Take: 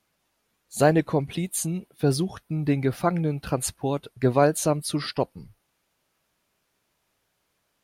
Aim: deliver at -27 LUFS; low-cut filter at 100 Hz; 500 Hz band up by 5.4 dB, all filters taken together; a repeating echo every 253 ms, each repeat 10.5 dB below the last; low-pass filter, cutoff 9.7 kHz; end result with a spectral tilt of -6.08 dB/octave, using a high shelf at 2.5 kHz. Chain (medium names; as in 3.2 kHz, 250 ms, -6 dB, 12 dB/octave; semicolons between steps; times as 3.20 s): high-pass 100 Hz; low-pass 9.7 kHz; peaking EQ 500 Hz +7 dB; treble shelf 2.5 kHz -8.5 dB; feedback delay 253 ms, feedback 30%, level -10.5 dB; trim -5 dB